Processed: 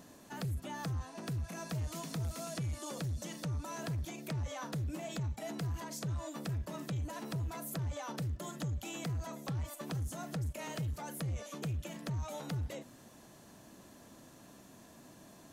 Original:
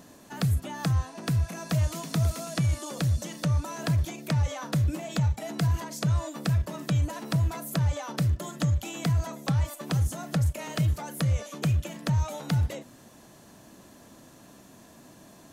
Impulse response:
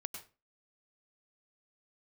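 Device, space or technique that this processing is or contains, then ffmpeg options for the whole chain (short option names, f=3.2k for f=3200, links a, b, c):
soft clipper into limiter: -af "asoftclip=type=tanh:threshold=-23dB,alimiter=level_in=4dB:limit=-24dB:level=0:latency=1:release=161,volume=-4dB,volume=-4.5dB"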